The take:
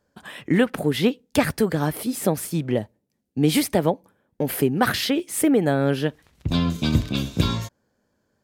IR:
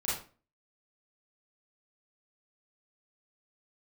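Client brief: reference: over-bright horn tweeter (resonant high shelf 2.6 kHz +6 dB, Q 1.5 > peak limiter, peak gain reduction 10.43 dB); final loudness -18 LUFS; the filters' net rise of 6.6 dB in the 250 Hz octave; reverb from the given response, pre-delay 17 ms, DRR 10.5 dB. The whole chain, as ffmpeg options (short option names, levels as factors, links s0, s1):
-filter_complex "[0:a]equalizer=f=250:t=o:g=8,asplit=2[s0][s1];[1:a]atrim=start_sample=2205,adelay=17[s2];[s1][s2]afir=irnorm=-1:irlink=0,volume=0.158[s3];[s0][s3]amix=inputs=2:normalize=0,highshelf=f=2600:t=q:w=1.5:g=6,volume=1.33,alimiter=limit=0.447:level=0:latency=1"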